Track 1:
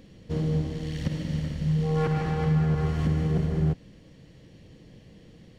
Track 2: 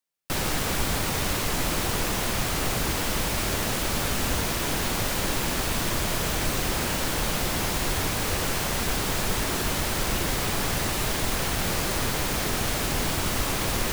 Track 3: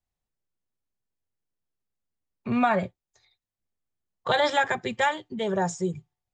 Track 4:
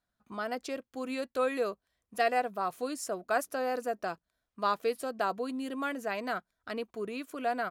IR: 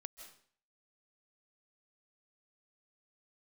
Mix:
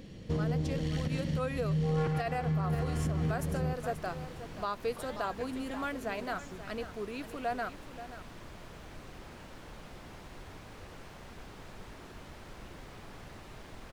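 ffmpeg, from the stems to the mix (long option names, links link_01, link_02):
-filter_complex "[0:a]volume=2.5dB,asplit=2[link_01][link_02];[link_02]volume=-23dB[link_03];[1:a]aemphasis=mode=reproduction:type=75kf,adelay=2500,volume=-20dB[link_04];[2:a]acompressor=threshold=-29dB:ratio=6,adelay=700,volume=-15dB[link_05];[3:a]volume=-2.5dB,asplit=3[link_06][link_07][link_08];[link_07]volume=-13dB[link_09];[link_08]apad=whole_len=246159[link_10];[link_01][link_10]sidechaincompress=threshold=-36dB:ratio=8:attack=33:release=655[link_11];[link_03][link_09]amix=inputs=2:normalize=0,aecho=0:1:532:1[link_12];[link_11][link_04][link_05][link_06][link_12]amix=inputs=5:normalize=0,alimiter=limit=-23.5dB:level=0:latency=1:release=112"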